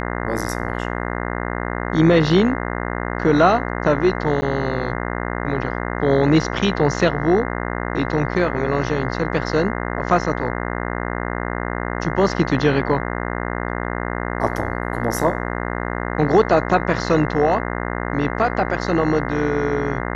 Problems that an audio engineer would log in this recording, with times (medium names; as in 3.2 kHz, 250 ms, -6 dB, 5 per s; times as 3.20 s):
buzz 60 Hz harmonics 35 -25 dBFS
4.41–4.42 s: dropout 10 ms